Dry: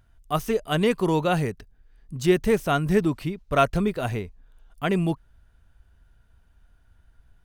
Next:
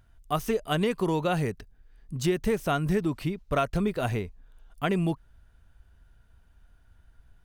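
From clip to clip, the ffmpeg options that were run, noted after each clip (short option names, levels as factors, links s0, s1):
-af "acompressor=threshold=0.0794:ratio=5"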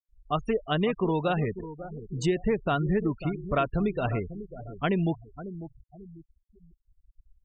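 -filter_complex "[0:a]asplit=2[s0][s1];[s1]adelay=546,lowpass=f=1700:p=1,volume=0.237,asplit=2[s2][s3];[s3]adelay=546,lowpass=f=1700:p=1,volume=0.42,asplit=2[s4][s5];[s5]adelay=546,lowpass=f=1700:p=1,volume=0.42,asplit=2[s6][s7];[s7]adelay=546,lowpass=f=1700:p=1,volume=0.42[s8];[s0][s2][s4][s6][s8]amix=inputs=5:normalize=0,afftfilt=real='re*gte(hypot(re,im),0.0224)':imag='im*gte(hypot(re,im),0.0224)':win_size=1024:overlap=0.75"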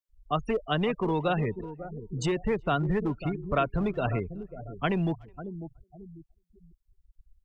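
-filter_complex "[0:a]acrossover=split=140|490|1900[s0][s1][s2][s3];[s1]asoftclip=type=hard:threshold=0.0422[s4];[s0][s4][s2][s3]amix=inputs=4:normalize=0,asplit=2[s5][s6];[s6]adelay=370,highpass=300,lowpass=3400,asoftclip=type=hard:threshold=0.075,volume=0.0316[s7];[s5][s7]amix=inputs=2:normalize=0"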